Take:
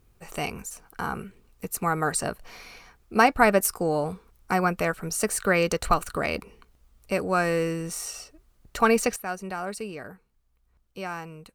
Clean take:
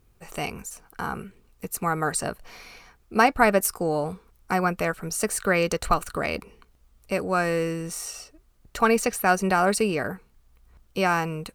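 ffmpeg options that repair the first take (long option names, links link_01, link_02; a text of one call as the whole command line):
ffmpeg -i in.wav -af "asetnsamples=nb_out_samples=441:pad=0,asendcmd='9.16 volume volume 11.5dB',volume=0dB" out.wav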